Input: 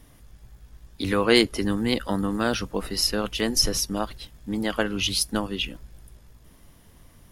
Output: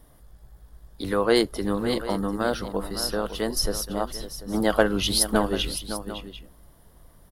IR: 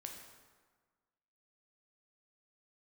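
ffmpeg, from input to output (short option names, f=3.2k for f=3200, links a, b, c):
-filter_complex "[0:a]equalizer=f=100:t=o:w=0.67:g=-6,equalizer=f=250:t=o:w=0.67:g=-5,equalizer=f=630:t=o:w=0.67:g=3,equalizer=f=2.5k:t=o:w=0.67:g=-12,equalizer=f=6.3k:t=o:w=0.67:g=-8,asettb=1/sr,asplit=3[a][b][c];[a]atrim=end=4.544[d];[b]atrim=start=4.54:end=5.72,asetpts=PTS-STARTPTS,afade=t=in:d=0.004:c=qsin,afade=t=out:st=1.176:d=0.004:c=qsin,acontrast=62[e];[c]atrim=start=5.716[f];[d][e]acrossfade=d=0.004:c1=hsin:c2=qsin[g];[g][f]acrossfade=d=0.004:c1=qsin:c2=hsin,asplit=2[h][i];[i]aecho=0:1:557|742:0.282|0.178[j];[h][j]amix=inputs=2:normalize=0"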